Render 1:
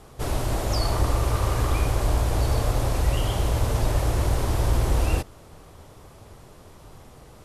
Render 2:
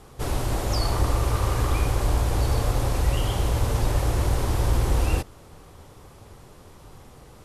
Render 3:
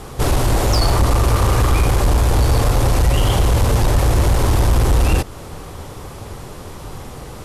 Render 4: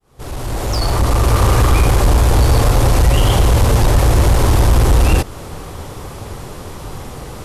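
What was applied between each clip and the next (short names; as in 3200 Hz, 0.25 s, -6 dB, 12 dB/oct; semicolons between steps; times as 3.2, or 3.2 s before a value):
notch 640 Hz, Q 12
in parallel at +1 dB: compressor, threshold -28 dBFS, peak gain reduction 12 dB; on the sum: soft clip -16 dBFS, distortion -14 dB; gain +8 dB
opening faded in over 1.43 s; gain +3 dB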